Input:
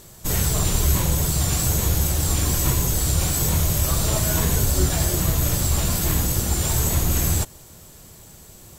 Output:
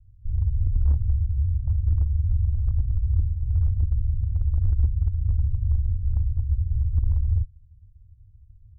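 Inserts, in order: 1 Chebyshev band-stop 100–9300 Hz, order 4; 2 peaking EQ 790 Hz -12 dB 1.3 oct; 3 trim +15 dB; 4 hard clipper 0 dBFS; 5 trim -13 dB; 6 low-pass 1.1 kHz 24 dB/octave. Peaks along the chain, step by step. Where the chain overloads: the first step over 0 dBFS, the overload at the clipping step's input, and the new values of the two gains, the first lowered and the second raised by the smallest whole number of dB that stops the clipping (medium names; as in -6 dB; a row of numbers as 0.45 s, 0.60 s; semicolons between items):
-9.0 dBFS, -9.0 dBFS, +6.0 dBFS, 0.0 dBFS, -13.0 dBFS, -13.0 dBFS; step 3, 6.0 dB; step 3 +9 dB, step 5 -7 dB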